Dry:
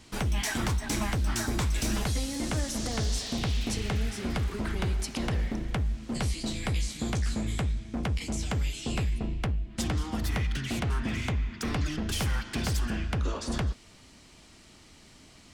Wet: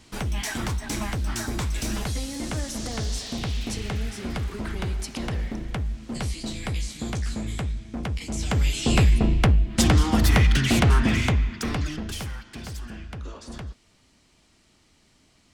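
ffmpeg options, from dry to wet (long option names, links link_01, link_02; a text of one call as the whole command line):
ffmpeg -i in.wav -af "volume=11.5dB,afade=type=in:start_time=8.28:duration=0.72:silence=0.281838,afade=type=out:start_time=10.87:duration=0.8:silence=0.398107,afade=type=out:start_time=11.67:duration=0.7:silence=0.298538" out.wav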